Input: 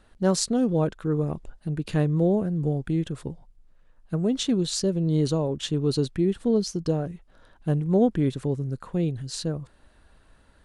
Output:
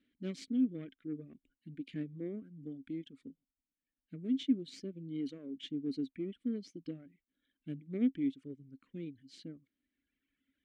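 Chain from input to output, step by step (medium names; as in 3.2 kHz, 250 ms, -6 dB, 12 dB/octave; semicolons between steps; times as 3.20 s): reverb removal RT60 1.9 s; Chebyshev shaper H 4 -24 dB, 6 -19 dB, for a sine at -9.5 dBFS; vowel filter i; trim -1.5 dB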